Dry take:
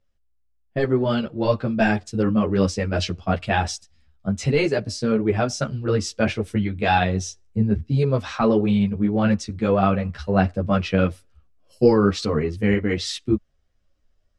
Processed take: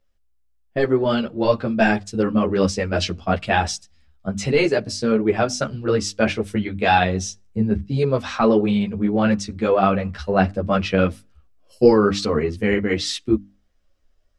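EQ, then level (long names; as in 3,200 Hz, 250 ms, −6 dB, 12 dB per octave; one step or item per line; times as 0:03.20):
parametric band 120 Hz −6 dB 0.98 octaves
mains-hum notches 50/100/150/200/250/300 Hz
+3.0 dB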